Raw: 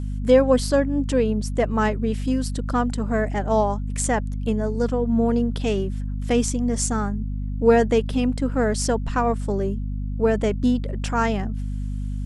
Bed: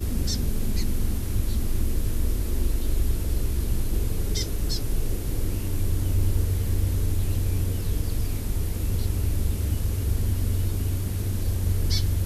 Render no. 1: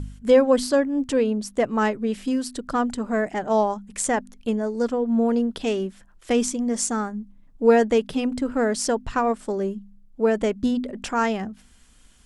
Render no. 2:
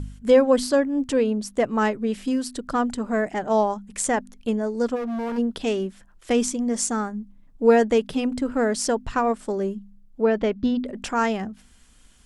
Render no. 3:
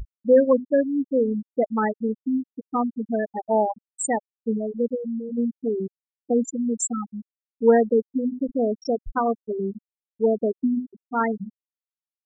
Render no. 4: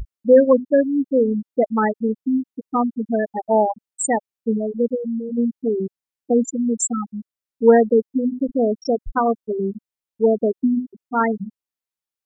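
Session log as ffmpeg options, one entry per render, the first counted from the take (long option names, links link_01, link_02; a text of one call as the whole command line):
ffmpeg -i in.wav -af "bandreject=frequency=50:width_type=h:width=4,bandreject=frequency=100:width_type=h:width=4,bandreject=frequency=150:width_type=h:width=4,bandreject=frequency=200:width_type=h:width=4,bandreject=frequency=250:width_type=h:width=4" out.wav
ffmpeg -i in.wav -filter_complex "[0:a]asplit=3[link_01][link_02][link_03];[link_01]afade=type=out:start_time=4.95:duration=0.02[link_04];[link_02]volume=26dB,asoftclip=hard,volume=-26dB,afade=type=in:start_time=4.95:duration=0.02,afade=type=out:start_time=5.37:duration=0.02[link_05];[link_03]afade=type=in:start_time=5.37:duration=0.02[link_06];[link_04][link_05][link_06]amix=inputs=3:normalize=0,asettb=1/sr,asplit=3[link_07][link_08][link_09];[link_07]atrim=end=10.214[link_10];[link_08]atrim=start=10.21:end=10.85,asetpts=PTS-STARTPTS,afade=type=in:duration=0.004:curve=qsin,afade=type=out:start_time=0.636:duration=0.004:curve=qsin,lowpass=frequency=4900:width=0.5412,lowpass=frequency=4900:width=1.3066[link_11];[link_09]atrim=start=10.846[link_12];[link_10][link_11]acrossfade=duration=0.004:curve1=hsin:curve2=qsin[link_13];[link_13][link_12]acrossfade=duration=0.004:curve1=qsin:curve2=hsin" out.wav
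ffmpeg -i in.wav -af "highshelf=frequency=4400:gain=7.5,afftfilt=real='re*gte(hypot(re,im),0.316)':imag='im*gte(hypot(re,im),0.316)':win_size=1024:overlap=0.75" out.wav
ffmpeg -i in.wav -af "volume=4dB" out.wav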